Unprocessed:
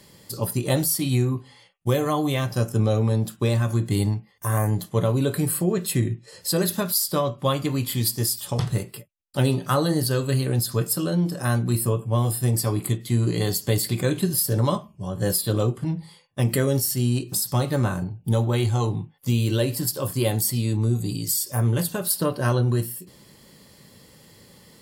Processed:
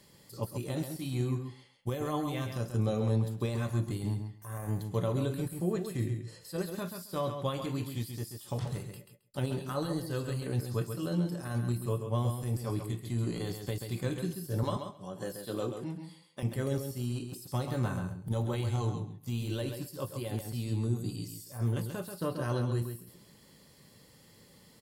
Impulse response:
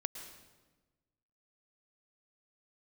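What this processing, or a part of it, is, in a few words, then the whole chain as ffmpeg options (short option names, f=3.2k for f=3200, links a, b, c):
de-esser from a sidechain: -filter_complex "[0:a]asettb=1/sr,asplit=3[a][b][c];[a]atrim=end=14.634[d];[b]atrim=start=14.63:end=16.43,asetpts=PTS-STARTPTS,afade=t=in:d=0.004:c=qsin,afade=t=out:st=1.796:d=0.004:c=qsin,highpass=210[e];[c]atrim=start=16.426[f];[d][e]acrossfade=d=0.004:c1=hsin:c2=qsin[g];[g][f]acrossfade=d=0.004:c1=qsin:c2=hsin,asplit=2[h][i];[i]highpass=6.4k,apad=whole_len=1094311[j];[h][j]sidechaincompress=threshold=-44dB:ratio=3:attack=2:release=33,aecho=1:1:134|268|402:0.447|0.067|0.0101,volume=-8.5dB"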